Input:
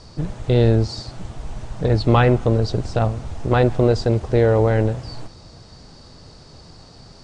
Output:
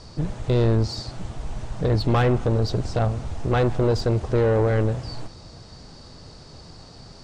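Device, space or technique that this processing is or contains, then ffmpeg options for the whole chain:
saturation between pre-emphasis and de-emphasis: -af "highshelf=f=3k:g=12,asoftclip=type=tanh:threshold=-14dB,highshelf=f=3k:g=-12"

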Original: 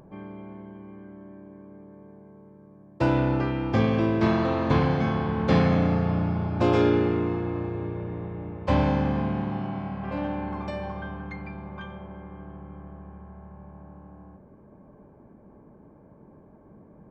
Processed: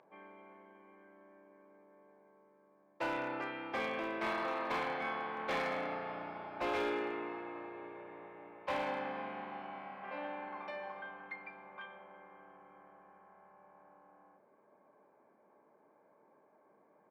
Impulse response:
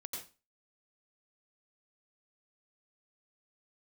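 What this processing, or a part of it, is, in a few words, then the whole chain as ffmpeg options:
megaphone: -filter_complex "[0:a]highpass=620,lowpass=3.4k,equalizer=f=2.2k:t=o:w=0.46:g=5,asoftclip=type=hard:threshold=-24dB,asplit=2[a][b];[b]adelay=31,volume=-13dB[c];[a][c]amix=inputs=2:normalize=0,volume=-6.5dB"

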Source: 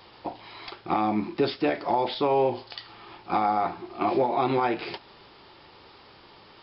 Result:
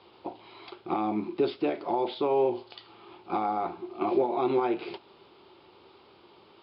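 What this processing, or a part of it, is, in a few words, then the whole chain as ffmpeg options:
guitar cabinet: -af "highpass=84,equalizer=f=130:t=q:w=4:g=-4,equalizer=f=370:t=q:w=4:g=8,equalizer=f=1.8k:t=q:w=4:g=-9,lowpass=f=4.1k:w=0.5412,lowpass=f=4.1k:w=1.3066,volume=-5dB"

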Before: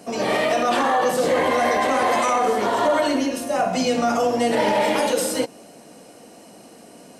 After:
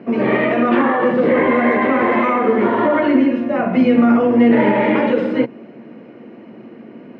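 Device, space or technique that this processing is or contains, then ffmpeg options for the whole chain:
bass cabinet: -af "highpass=74,equalizer=f=130:t=q:w=4:g=7,equalizer=f=230:t=q:w=4:g=10,equalizer=f=360:t=q:w=4:g=9,equalizer=f=740:t=q:w=4:g=-7,equalizer=f=2.1k:t=q:w=4:g=4,lowpass=f=2.4k:w=0.5412,lowpass=f=2.4k:w=1.3066,volume=3.5dB"

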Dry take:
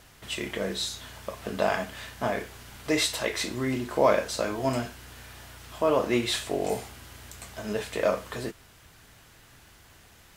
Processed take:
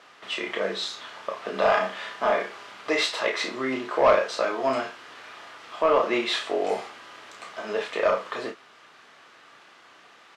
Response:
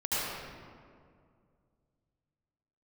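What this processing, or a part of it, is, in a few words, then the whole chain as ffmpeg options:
intercom: -filter_complex "[0:a]highpass=110,asplit=3[a][b][c];[a]afade=t=out:st=1.53:d=0.02[d];[b]asplit=2[e][f];[f]adelay=36,volume=-4dB[g];[e][g]amix=inputs=2:normalize=0,afade=t=in:st=1.53:d=0.02,afade=t=out:st=2.71:d=0.02[h];[c]afade=t=in:st=2.71:d=0.02[i];[d][h][i]amix=inputs=3:normalize=0,highpass=380,lowpass=3.9k,equalizer=f=1.2k:t=o:w=0.2:g=8,asoftclip=type=tanh:threshold=-15.5dB,asplit=2[j][k];[k]adelay=31,volume=-6dB[l];[j][l]amix=inputs=2:normalize=0,volume=4dB"

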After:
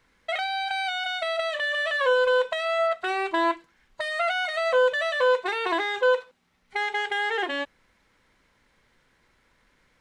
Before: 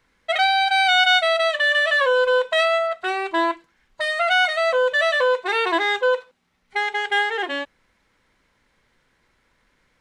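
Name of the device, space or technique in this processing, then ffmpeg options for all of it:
de-esser from a sidechain: -filter_complex "[0:a]asplit=2[a][b];[b]highpass=6.4k,apad=whole_len=441090[c];[a][c]sidechaincompress=threshold=-45dB:ratio=5:attack=2:release=32"

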